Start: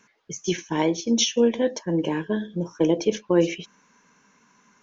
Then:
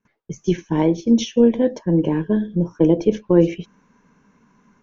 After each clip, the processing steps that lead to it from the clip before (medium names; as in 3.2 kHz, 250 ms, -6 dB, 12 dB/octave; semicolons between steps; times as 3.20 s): tilt EQ -3.5 dB/octave; gate with hold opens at -48 dBFS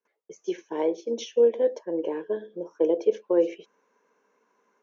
ladder high-pass 390 Hz, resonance 50%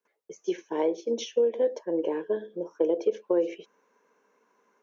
compression, threshold -21 dBFS, peak gain reduction 6.5 dB; trim +1 dB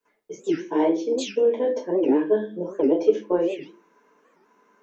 reverberation RT60 0.30 s, pre-delay 3 ms, DRR -5.5 dB; warped record 78 rpm, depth 250 cents